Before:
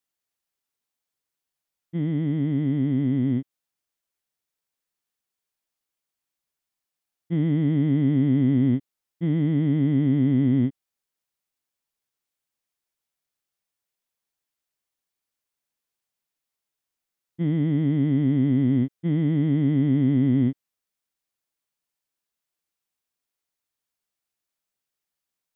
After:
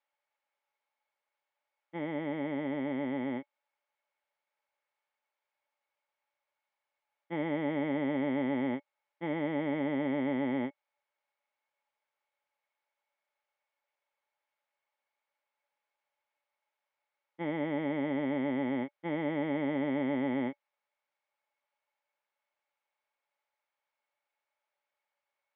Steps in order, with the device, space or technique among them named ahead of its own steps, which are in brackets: tin-can telephone (band-pass 680–2200 Hz; small resonant body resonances 580/850/2200 Hz, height 14 dB, ringing for 70 ms); trim +5 dB

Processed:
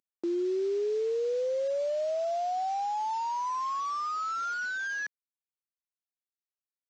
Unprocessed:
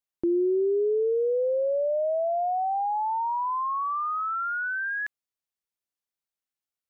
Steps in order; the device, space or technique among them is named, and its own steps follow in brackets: early wireless headset (high-pass 210 Hz 6 dB/octave; CVSD coder 32 kbps); high-pass 230 Hz 12 dB/octave; trim -3.5 dB

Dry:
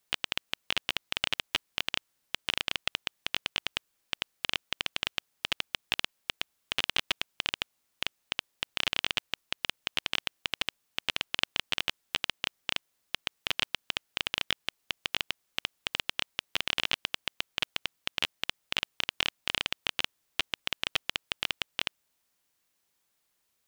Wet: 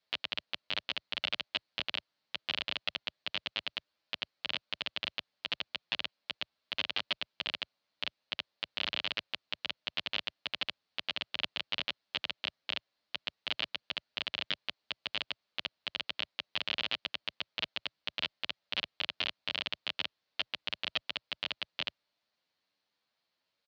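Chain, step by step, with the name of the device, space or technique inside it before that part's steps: barber-pole flanger into a guitar amplifier (endless flanger 9.1 ms +1.2 Hz; saturation -16.5 dBFS, distortion -18 dB; cabinet simulation 90–4600 Hz, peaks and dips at 120 Hz -5 dB, 380 Hz -4 dB, 600 Hz +5 dB, 4.3 kHz +7 dB)

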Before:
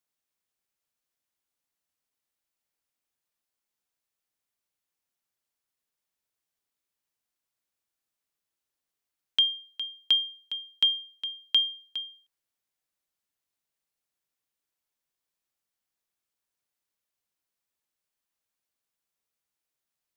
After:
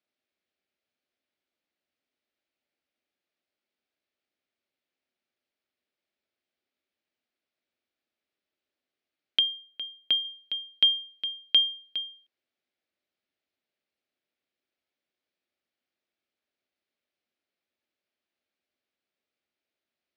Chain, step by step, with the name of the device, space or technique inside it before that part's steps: 9.39–10.25 s: distance through air 210 m; guitar cabinet (cabinet simulation 77–4500 Hz, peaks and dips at 130 Hz -9 dB, 250 Hz +6 dB, 360 Hz +6 dB, 600 Hz +6 dB, 1 kHz -8 dB, 2.3 kHz +3 dB); trim +2 dB

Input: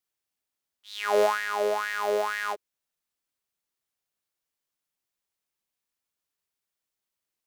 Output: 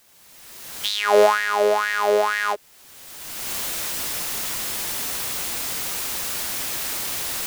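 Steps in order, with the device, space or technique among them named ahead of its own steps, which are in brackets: cheap recorder with automatic gain (white noise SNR 32 dB; recorder AGC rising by 30 dB/s); trim +7.5 dB

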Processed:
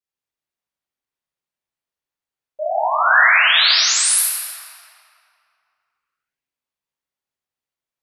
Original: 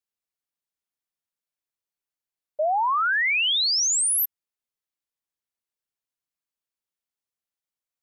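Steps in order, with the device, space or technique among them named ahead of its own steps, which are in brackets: 2.73–4.21 s: fifteen-band graphic EQ 630 Hz -11 dB, 1.6 kHz +8 dB, 4 kHz +6 dB, 10 kHz +9 dB; swimming-pool hall (reverberation RT60 2.6 s, pre-delay 16 ms, DRR -8.5 dB; treble shelf 5.8 kHz -6 dB); trim -3.5 dB

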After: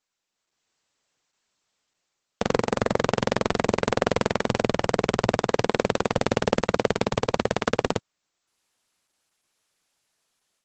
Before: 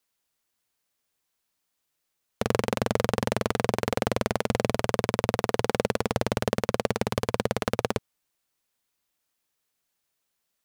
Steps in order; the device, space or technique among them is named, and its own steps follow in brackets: 2.52–3.01 s: dynamic bell 3 kHz, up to -5 dB, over -53 dBFS, Q 2.4; video call (high-pass 120 Hz 6 dB/octave; level rider gain up to 8.5 dB; trim -1 dB; Opus 12 kbps 48 kHz)

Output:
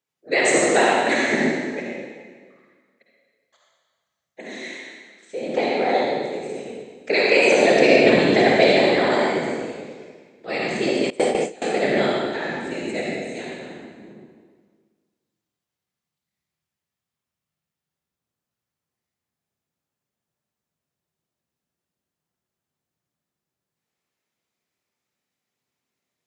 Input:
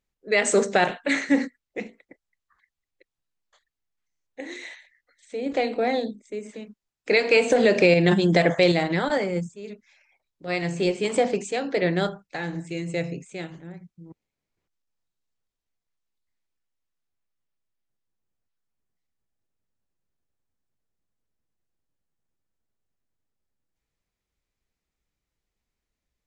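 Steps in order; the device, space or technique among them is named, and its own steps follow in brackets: whispering ghost (whisper effect; high-pass 270 Hz 12 dB/octave; reverberation RT60 1.6 s, pre-delay 48 ms, DRR -3.5 dB); 11.10–11.62 s: gate with hold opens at -9 dBFS

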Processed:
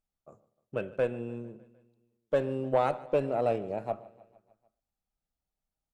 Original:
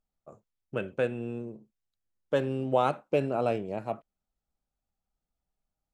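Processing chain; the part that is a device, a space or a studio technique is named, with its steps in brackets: rockabilly slapback (valve stage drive 17 dB, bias 0.4; tape echo 117 ms, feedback 32%, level -18.5 dB, low-pass 1 kHz); dynamic bell 600 Hz, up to +5 dB, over -41 dBFS, Q 1.3; feedback delay 151 ms, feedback 60%, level -21 dB; trim -2 dB

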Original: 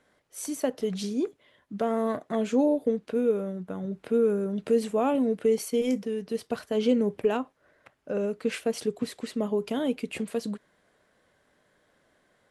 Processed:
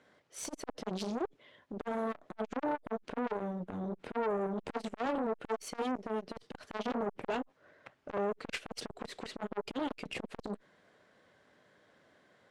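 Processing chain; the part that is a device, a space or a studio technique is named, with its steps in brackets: valve radio (band-pass 87–6000 Hz; valve stage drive 29 dB, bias 0.5; transformer saturation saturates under 740 Hz); trim +3.5 dB

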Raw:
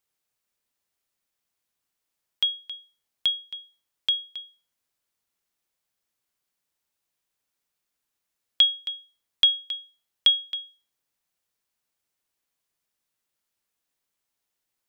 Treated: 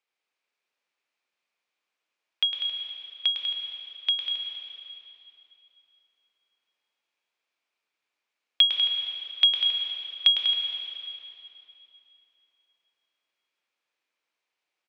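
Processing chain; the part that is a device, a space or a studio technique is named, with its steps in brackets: station announcement (band-pass 360–4100 Hz; peaking EQ 2.4 kHz +7 dB 0.32 oct; loudspeakers at several distances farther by 36 m -7 dB, 67 m -9 dB; reverberation RT60 3.1 s, pre-delay 114 ms, DRR 3 dB)

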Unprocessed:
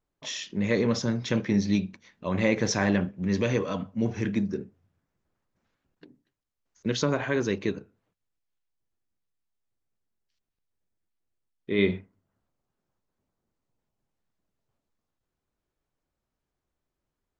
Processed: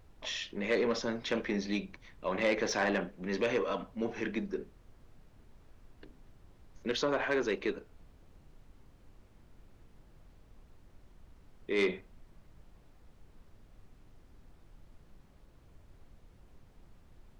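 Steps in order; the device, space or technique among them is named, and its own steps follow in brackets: aircraft cabin announcement (band-pass 370–4100 Hz; saturation -21 dBFS, distortion -16 dB; brown noise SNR 17 dB)

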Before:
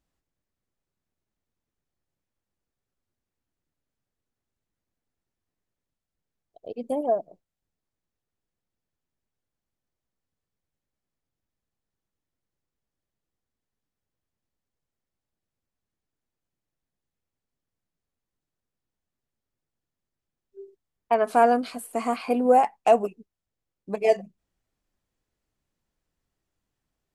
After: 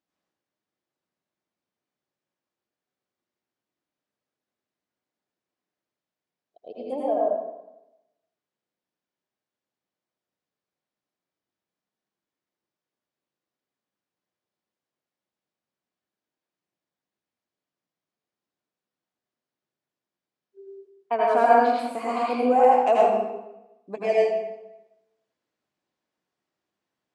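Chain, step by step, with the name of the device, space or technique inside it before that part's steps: supermarket ceiling speaker (band-pass 220–5900 Hz; reverberation RT60 0.95 s, pre-delay 76 ms, DRR -5 dB); trim -4 dB

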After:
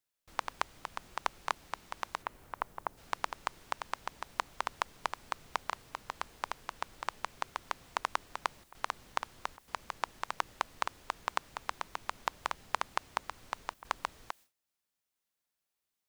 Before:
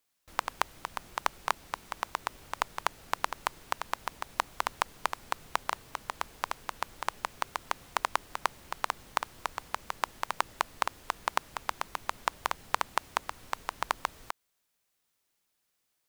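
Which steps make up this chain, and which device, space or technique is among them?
2.22–2.96 s: low-pass 2.6 kHz -> 1 kHz 12 dB/octave; worn cassette (low-pass 8.2 kHz 12 dB/octave; wow and flutter; level dips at 8.64/9.57/13.74 s, 106 ms -14 dB; white noise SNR 26 dB); gate with hold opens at -49 dBFS; trim -4 dB

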